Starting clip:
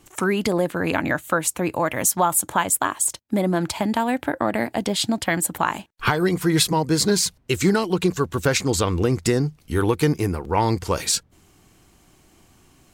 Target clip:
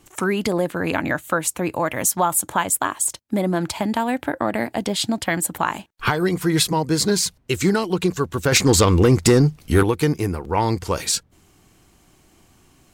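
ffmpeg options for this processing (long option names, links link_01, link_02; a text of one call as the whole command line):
ffmpeg -i in.wav -filter_complex "[0:a]asettb=1/sr,asplit=3[link_01][link_02][link_03];[link_01]atrim=end=8.524[link_04];[link_02]atrim=start=8.52:end=9.83,asetpts=PTS-STARTPTS,afade=type=in:duration=0.004:curve=qsin,afade=type=out:start_time=1.306:duration=0.004:curve=qsin,aeval=exprs='0.422*sin(PI/2*1.58*val(0)/0.422)':channel_layout=same[link_05];[link_03]atrim=start=9.826[link_06];[link_04][link_05]acrossfade=duration=0.004:curve1=hsin:curve2=qsin[link_07];[link_07][link_06]acrossfade=duration=0.004:curve1=qsin:curve2=hsin" out.wav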